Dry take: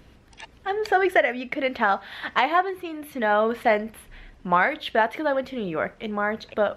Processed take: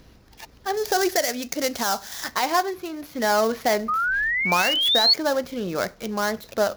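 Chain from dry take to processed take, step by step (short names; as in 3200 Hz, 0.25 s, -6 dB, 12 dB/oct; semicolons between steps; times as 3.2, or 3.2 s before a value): switching dead time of 0.093 ms; bell 8500 Hz -11 dB 0.53 oct; 3.88–5.14 painted sound rise 1200–4500 Hz -23 dBFS; resonant high shelf 3700 Hz +6 dB, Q 1.5, from 0.77 s +12.5 dB, from 2.24 s +7 dB; limiter -10.5 dBFS, peak gain reduction 9 dB; gain +1 dB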